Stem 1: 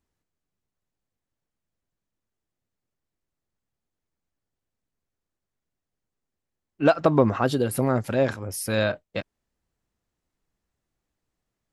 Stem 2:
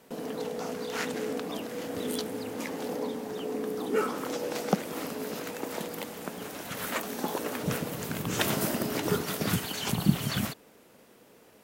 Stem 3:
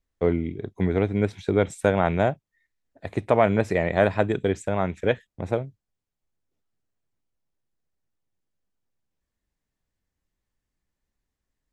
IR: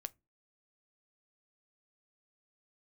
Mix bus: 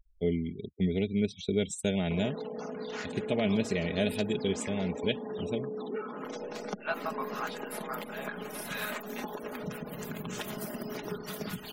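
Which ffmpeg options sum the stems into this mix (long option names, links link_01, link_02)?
-filter_complex "[0:a]highpass=frequency=900:width=0.5412,highpass=frequency=900:width=1.3066,equalizer=frequency=6700:width=0.8:gain=-9,flanger=delay=17.5:depth=4.1:speed=0.18,volume=-6dB,asplit=2[link_01][link_02];[link_02]volume=-9.5dB[link_03];[1:a]acompressor=threshold=-36dB:ratio=6,adelay=2000,volume=-1dB,asplit=2[link_04][link_05];[link_05]volume=-16dB[link_06];[2:a]acompressor=mode=upward:threshold=-41dB:ratio=2.5,firequalizer=gain_entry='entry(230,0);entry(1100,-20);entry(2800,8)':delay=0.05:min_phase=1,volume=-5.5dB[link_07];[3:a]atrim=start_sample=2205[link_08];[link_03][link_06]amix=inputs=2:normalize=0[link_09];[link_09][link_08]afir=irnorm=-1:irlink=0[link_10];[link_01][link_04][link_07][link_10]amix=inputs=4:normalize=0,afftfilt=real='re*gte(hypot(re,im),0.00501)':imag='im*gte(hypot(re,im),0.00501)':win_size=1024:overlap=0.75,aecho=1:1:4.8:0.52"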